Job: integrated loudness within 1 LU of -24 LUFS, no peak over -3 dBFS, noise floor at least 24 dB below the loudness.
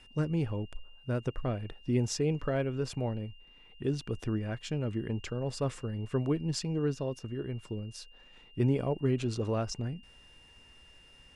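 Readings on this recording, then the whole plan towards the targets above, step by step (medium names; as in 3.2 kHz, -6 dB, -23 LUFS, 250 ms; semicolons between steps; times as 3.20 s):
steady tone 2.8 kHz; tone level -57 dBFS; loudness -33.5 LUFS; peak level -16.5 dBFS; loudness target -24.0 LUFS
-> band-stop 2.8 kHz, Q 30; trim +9.5 dB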